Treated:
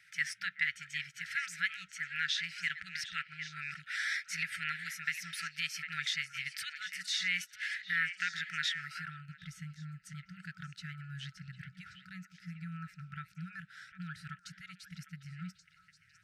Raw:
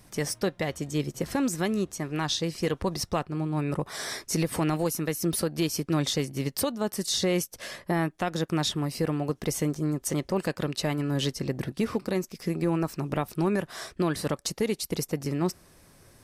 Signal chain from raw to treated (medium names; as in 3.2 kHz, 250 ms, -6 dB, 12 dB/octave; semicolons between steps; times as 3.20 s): repeats whose band climbs or falls 376 ms, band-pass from 870 Hz, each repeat 1.4 oct, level -5 dB; band-pass sweep 2 kHz -> 650 Hz, 8.77–9.37 s; FFT band-reject 190–1300 Hz; trim +6.5 dB